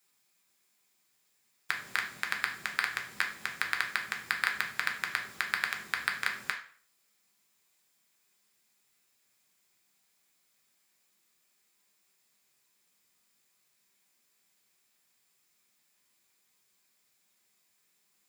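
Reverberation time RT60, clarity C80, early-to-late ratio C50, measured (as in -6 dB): 0.50 s, 14.0 dB, 9.5 dB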